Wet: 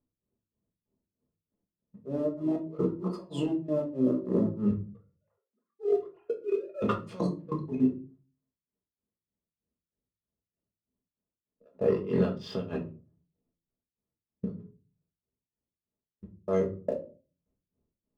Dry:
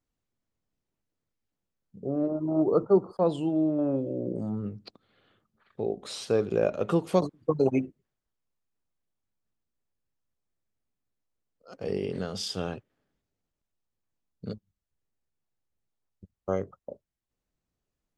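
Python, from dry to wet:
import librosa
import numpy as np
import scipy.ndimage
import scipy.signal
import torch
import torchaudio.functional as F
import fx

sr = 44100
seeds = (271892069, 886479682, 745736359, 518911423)

y = fx.sine_speech(x, sr, at=(4.71, 6.82))
y = fx.hum_notches(y, sr, base_hz=60, count=7)
y = fx.env_lowpass(y, sr, base_hz=590.0, full_db=-22.0)
y = fx.over_compress(y, sr, threshold_db=-31.0, ratio=-0.5)
y = fx.leveller(y, sr, passes=1)
y = fx.level_steps(y, sr, step_db=17)
y = fx.notch_comb(y, sr, f0_hz=760.0)
y = y * (1.0 - 1.0 / 2.0 + 1.0 / 2.0 * np.cos(2.0 * np.pi * 3.2 * (np.arange(len(y)) / sr)))
y = fx.room_shoebox(y, sr, seeds[0], volume_m3=190.0, walls='furnished', distance_m=1.4)
y = F.gain(torch.from_numpy(y), 7.0).numpy()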